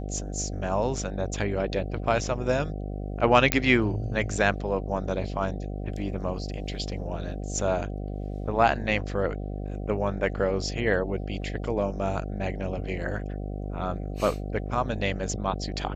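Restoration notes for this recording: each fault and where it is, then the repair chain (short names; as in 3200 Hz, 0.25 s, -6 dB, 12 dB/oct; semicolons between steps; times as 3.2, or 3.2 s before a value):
buzz 50 Hz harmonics 15 -33 dBFS
3.52 pop -3 dBFS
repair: de-click; de-hum 50 Hz, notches 15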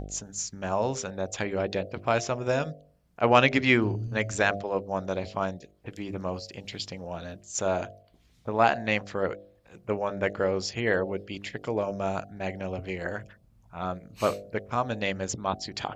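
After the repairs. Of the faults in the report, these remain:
none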